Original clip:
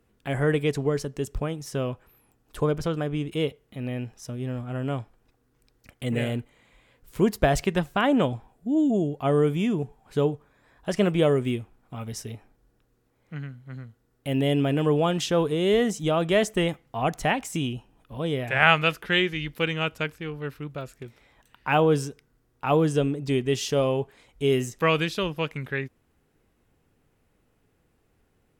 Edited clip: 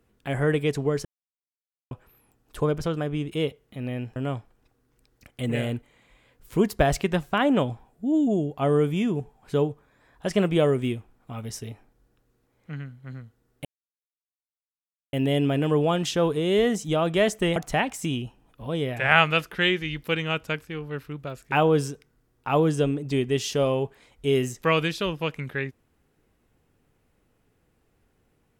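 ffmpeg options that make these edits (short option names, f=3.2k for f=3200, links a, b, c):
-filter_complex "[0:a]asplit=7[a][b][c][d][e][f][g];[a]atrim=end=1.05,asetpts=PTS-STARTPTS,afade=t=out:st=1.046:d=0.004:c=hsin[h];[b]atrim=start=1.05:end=1.91,asetpts=PTS-STARTPTS,volume=0[i];[c]atrim=start=1.91:end=4.162,asetpts=PTS-STARTPTS,afade=t=in:d=0.004:c=hsin[j];[d]atrim=start=4.788:end=14.28,asetpts=PTS-STARTPTS,afade=t=out:st=9.488:d=0.004:c=hsin,apad=pad_dur=1.48[k];[e]atrim=start=14.28:end=16.712,asetpts=PTS-STARTPTS,afade=t=in:d=0.004:c=hsin[l];[f]atrim=start=17.068:end=21.032[m];[g]atrim=start=21.688[n];[h][i][j]concat=n=3:v=0:a=1[o];[k][l]concat=n=2:v=0:a=1[p];[o][p]acrossfade=d=0.004:c1=hsin:c2=hsin[q];[q][m]acrossfade=d=0.004:c1=hsin:c2=hsin[r];[r][n]acrossfade=d=0.004:c1=hsin:c2=hsin"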